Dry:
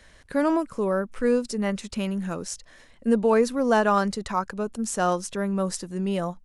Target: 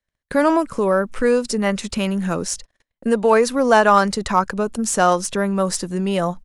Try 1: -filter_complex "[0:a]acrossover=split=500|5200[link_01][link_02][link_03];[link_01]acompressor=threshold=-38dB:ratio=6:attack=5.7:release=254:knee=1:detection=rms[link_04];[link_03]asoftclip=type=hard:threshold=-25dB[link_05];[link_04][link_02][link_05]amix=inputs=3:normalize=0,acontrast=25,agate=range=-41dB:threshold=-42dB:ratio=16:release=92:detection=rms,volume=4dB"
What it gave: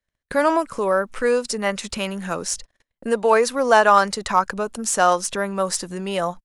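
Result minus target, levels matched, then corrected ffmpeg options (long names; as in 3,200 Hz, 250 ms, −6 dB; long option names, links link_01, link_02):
downward compressor: peak gain reduction +8.5 dB
-filter_complex "[0:a]acrossover=split=500|5200[link_01][link_02][link_03];[link_01]acompressor=threshold=-27.5dB:ratio=6:attack=5.7:release=254:knee=1:detection=rms[link_04];[link_03]asoftclip=type=hard:threshold=-25dB[link_05];[link_04][link_02][link_05]amix=inputs=3:normalize=0,acontrast=25,agate=range=-41dB:threshold=-42dB:ratio=16:release=92:detection=rms,volume=4dB"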